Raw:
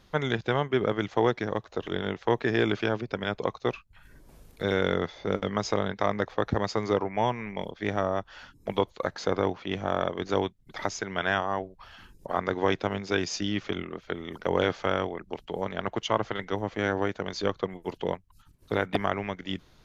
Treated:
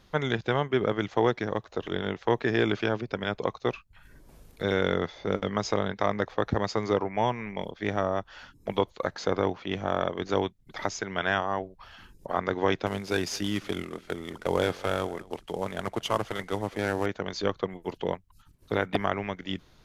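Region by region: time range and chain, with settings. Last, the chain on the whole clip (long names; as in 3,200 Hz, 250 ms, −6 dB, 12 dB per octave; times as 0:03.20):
0:12.86–0:17.06: variable-slope delta modulation 64 kbit/s + single-tap delay 214 ms −22 dB
whole clip: no processing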